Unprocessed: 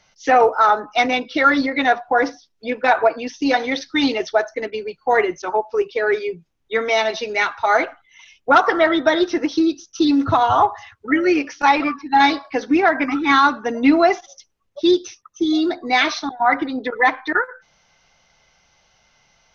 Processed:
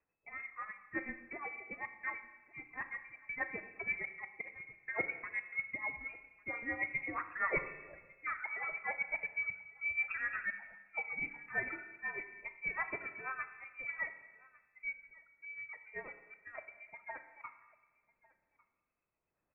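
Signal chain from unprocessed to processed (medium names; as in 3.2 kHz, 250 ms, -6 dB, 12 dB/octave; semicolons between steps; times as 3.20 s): Doppler pass-by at 7.25 s, 13 m/s, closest 2.2 m; reverb removal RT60 0.54 s; waveshaping leveller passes 1; reverse; compression 5:1, threshold -43 dBFS, peak gain reduction 25 dB; reverse; tremolo 8.2 Hz, depth 77%; added noise violet -71 dBFS; rotary cabinet horn 0.75 Hz; on a send: delay 1150 ms -24 dB; on the sum: Schroeder reverb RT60 1.2 s, combs from 30 ms, DRR 9.5 dB; frequency inversion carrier 2.6 kHz; trim +12 dB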